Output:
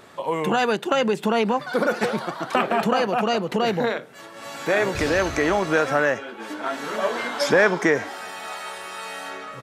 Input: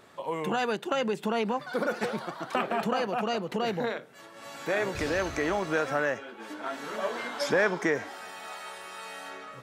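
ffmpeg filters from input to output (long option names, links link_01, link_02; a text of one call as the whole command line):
ffmpeg -i in.wav -af "aresample=32000,aresample=44100,volume=7.5dB" out.wav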